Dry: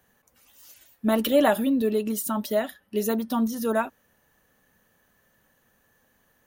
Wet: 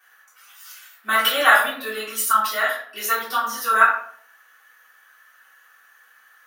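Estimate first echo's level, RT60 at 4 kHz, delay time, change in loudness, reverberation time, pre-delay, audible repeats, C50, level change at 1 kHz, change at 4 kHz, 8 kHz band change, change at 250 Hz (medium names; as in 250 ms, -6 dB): no echo, 0.35 s, no echo, +5.5 dB, 0.55 s, 3 ms, no echo, 4.5 dB, +11.5 dB, +11.5 dB, +8.0 dB, -17.0 dB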